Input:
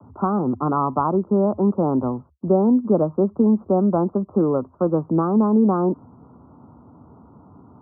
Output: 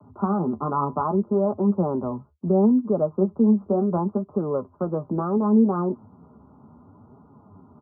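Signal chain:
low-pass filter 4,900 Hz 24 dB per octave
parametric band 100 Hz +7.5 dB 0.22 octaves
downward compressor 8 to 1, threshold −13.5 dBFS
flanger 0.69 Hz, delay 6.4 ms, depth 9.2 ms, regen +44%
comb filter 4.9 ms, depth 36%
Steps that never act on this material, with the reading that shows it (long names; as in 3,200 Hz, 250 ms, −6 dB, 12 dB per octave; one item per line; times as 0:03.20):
low-pass filter 4,900 Hz: nothing at its input above 1,300 Hz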